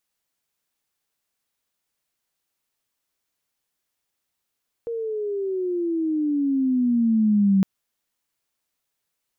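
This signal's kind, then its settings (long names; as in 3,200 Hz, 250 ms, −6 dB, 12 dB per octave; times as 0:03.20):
glide logarithmic 470 Hz → 190 Hz −25.5 dBFS → −14 dBFS 2.76 s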